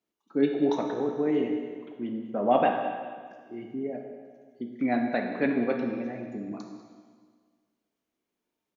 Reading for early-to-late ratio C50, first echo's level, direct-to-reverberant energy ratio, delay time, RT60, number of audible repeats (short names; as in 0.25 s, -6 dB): 4.0 dB, -16.0 dB, 2.0 dB, 0.195 s, 1.7 s, 1